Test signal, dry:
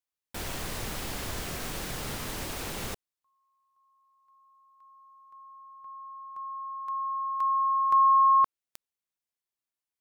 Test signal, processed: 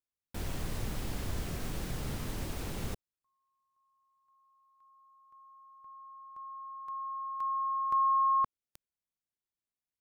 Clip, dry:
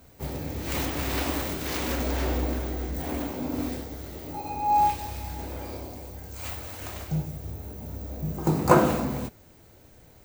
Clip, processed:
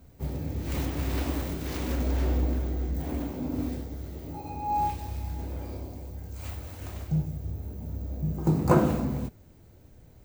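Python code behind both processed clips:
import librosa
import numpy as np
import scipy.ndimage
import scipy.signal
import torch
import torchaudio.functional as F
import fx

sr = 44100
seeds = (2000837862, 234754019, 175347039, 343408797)

y = fx.low_shelf(x, sr, hz=350.0, db=11.5)
y = y * librosa.db_to_amplitude(-8.0)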